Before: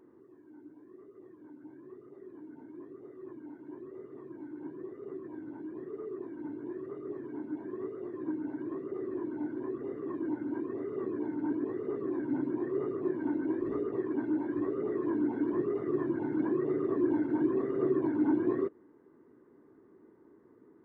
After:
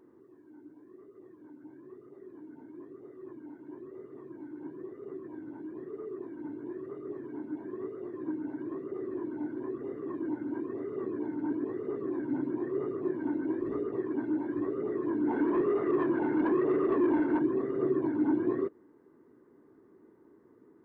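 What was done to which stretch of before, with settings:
15.27–17.39 s: overdrive pedal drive 18 dB, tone 1.8 kHz, clips at -17.5 dBFS

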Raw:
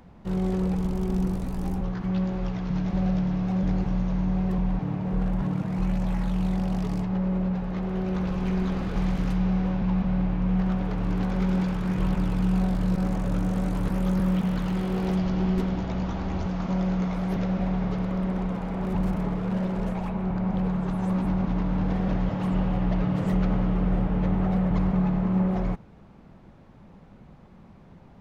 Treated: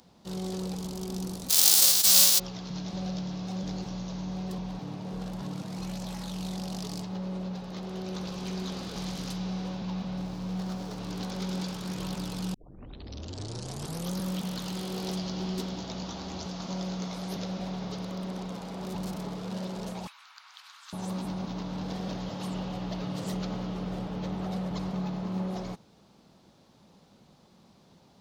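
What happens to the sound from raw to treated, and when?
1.49–2.38 s: formants flattened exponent 0.1
10.17–10.98 s: median filter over 15 samples
12.54 s: tape start 1.60 s
20.07–20.93 s: steep high-pass 1.2 kHz
whole clip: high-pass 250 Hz 6 dB/octave; resonant high shelf 3 kHz +12.5 dB, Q 1.5; trim -4.5 dB

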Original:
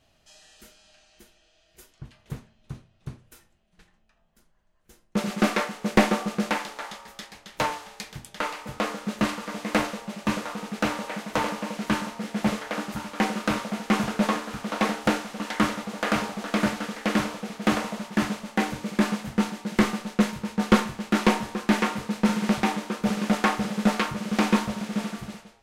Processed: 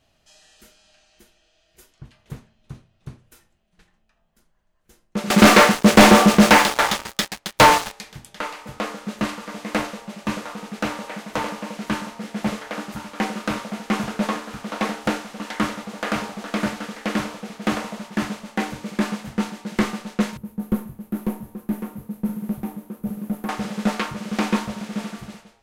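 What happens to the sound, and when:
5.30–7.92 s: waveshaping leveller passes 5
20.37–23.49 s: FFT filter 150 Hz 0 dB, 1.9 kHz -20 dB, 5.1 kHz -24 dB, 8.2 kHz -16 dB, 12 kHz +5 dB

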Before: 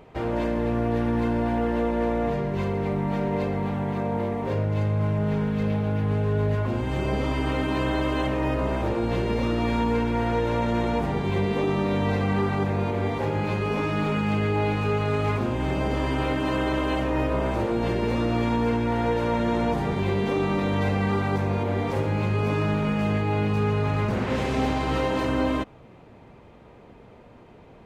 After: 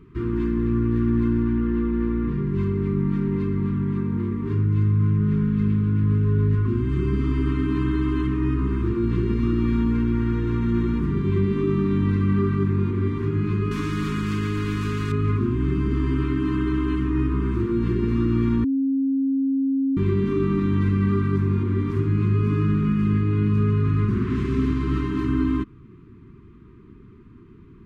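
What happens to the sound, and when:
1.43–2.47 s: distance through air 83 m
13.71–15.12 s: spectrum-flattening compressor 2:1
18.64–19.97 s: bleep 270 Hz -22.5 dBFS
whole clip: elliptic band-stop 380–1100 Hz, stop band 40 dB; tilt shelf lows +8.5 dB, about 1.4 kHz; trim -3 dB

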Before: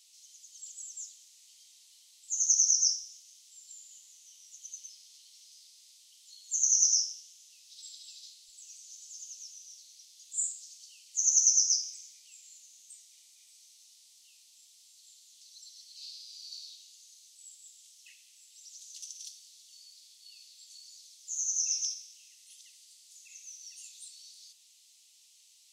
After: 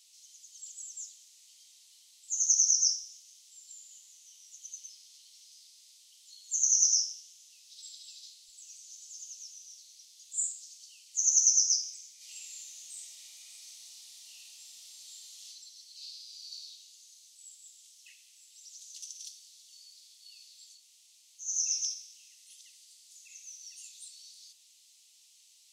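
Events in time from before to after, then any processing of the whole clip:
12.16–15.47 s: reverb throw, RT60 1.3 s, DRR -10 dB
20.76–21.46 s: room tone, crossfade 0.16 s

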